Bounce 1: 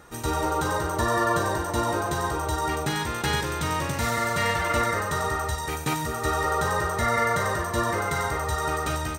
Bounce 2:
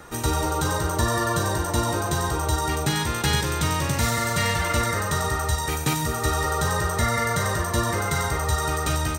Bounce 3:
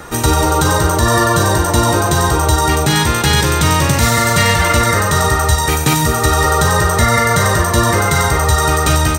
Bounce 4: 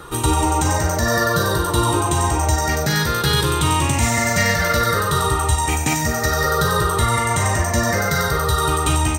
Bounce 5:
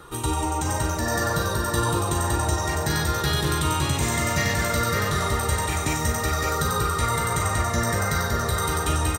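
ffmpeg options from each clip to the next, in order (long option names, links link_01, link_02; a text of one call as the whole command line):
ffmpeg -i in.wav -filter_complex "[0:a]acrossover=split=220|3000[link_01][link_02][link_03];[link_02]acompressor=threshold=-36dB:ratio=2[link_04];[link_01][link_04][link_03]amix=inputs=3:normalize=0,volume=6dB" out.wav
ffmpeg -i in.wav -af "alimiter=level_in=12.5dB:limit=-1dB:release=50:level=0:latency=1,volume=-1dB" out.wav
ffmpeg -i in.wav -af "afftfilt=real='re*pow(10,9/40*sin(2*PI*(0.63*log(max(b,1)*sr/1024/100)/log(2)-(-0.58)*(pts-256)/sr)))':imag='im*pow(10,9/40*sin(2*PI*(0.63*log(max(b,1)*sr/1024/100)/log(2)-(-0.58)*(pts-256)/sr)))':win_size=1024:overlap=0.75,volume=-6.5dB" out.wav
ffmpeg -i in.wav -af "aecho=1:1:562|1124|1686|2248|2810|3372|3934|4496:0.562|0.321|0.183|0.104|0.0594|0.0338|0.0193|0.011,volume=-7.5dB" out.wav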